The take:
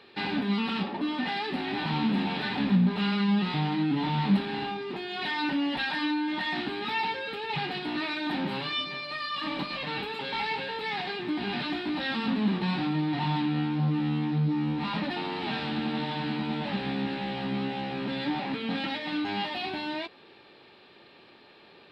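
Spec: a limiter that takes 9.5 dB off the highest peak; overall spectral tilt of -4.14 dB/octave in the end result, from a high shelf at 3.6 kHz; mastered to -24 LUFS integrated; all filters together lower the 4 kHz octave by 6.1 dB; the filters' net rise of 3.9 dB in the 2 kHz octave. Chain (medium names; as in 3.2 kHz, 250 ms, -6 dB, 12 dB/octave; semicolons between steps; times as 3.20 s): peaking EQ 2 kHz +8.5 dB; treble shelf 3.6 kHz -6 dB; peaking EQ 4 kHz -8.5 dB; trim +7.5 dB; peak limiter -15.5 dBFS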